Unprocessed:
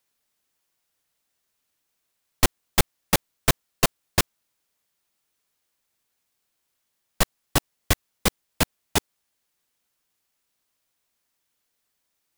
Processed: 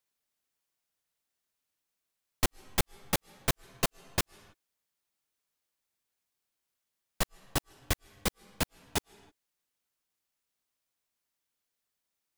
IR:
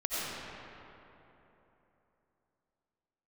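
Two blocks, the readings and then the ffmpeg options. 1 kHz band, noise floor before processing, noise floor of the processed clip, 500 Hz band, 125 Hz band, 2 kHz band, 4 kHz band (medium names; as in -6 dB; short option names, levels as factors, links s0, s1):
-8.5 dB, -77 dBFS, -85 dBFS, -8.5 dB, -8.5 dB, -8.5 dB, -8.5 dB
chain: -filter_complex "[0:a]asplit=2[s0][s1];[1:a]atrim=start_sample=2205,afade=t=out:st=0.25:d=0.01,atrim=end_sample=11466,asetrate=27342,aresample=44100[s2];[s1][s2]afir=irnorm=-1:irlink=0,volume=0.0299[s3];[s0][s3]amix=inputs=2:normalize=0,volume=0.355"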